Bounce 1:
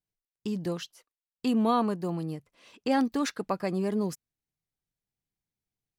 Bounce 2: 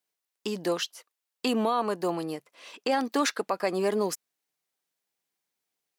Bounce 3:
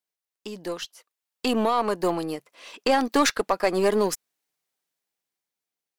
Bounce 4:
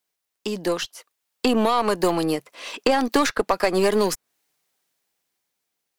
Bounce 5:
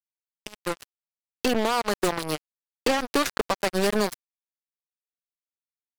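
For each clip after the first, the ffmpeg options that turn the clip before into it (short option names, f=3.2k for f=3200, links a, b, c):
-af "highpass=430,alimiter=level_in=0.5dB:limit=-24dB:level=0:latency=1:release=129,volume=-0.5dB,volume=9dB"
-af "dynaudnorm=f=400:g=7:m=8.5dB,aeval=exprs='0.447*(cos(1*acos(clip(val(0)/0.447,-1,1)))-cos(1*PI/2))+0.0316*(cos(2*acos(clip(val(0)/0.447,-1,1)))-cos(2*PI/2))+0.0126*(cos(6*acos(clip(val(0)/0.447,-1,1)))-cos(6*PI/2))+0.0158*(cos(7*acos(clip(val(0)/0.447,-1,1)))-cos(7*PI/2))':c=same,volume=-3dB"
-filter_complex "[0:a]acrossover=split=110|1800[a][b][c];[a]acompressor=threshold=-41dB:ratio=4[d];[b]acompressor=threshold=-27dB:ratio=4[e];[c]acompressor=threshold=-37dB:ratio=4[f];[d][e][f]amix=inputs=3:normalize=0,volume=9dB"
-af "acrusher=bits=2:mix=0:aa=0.5,volume=12.5dB,asoftclip=hard,volume=-12.5dB,volume=-2.5dB"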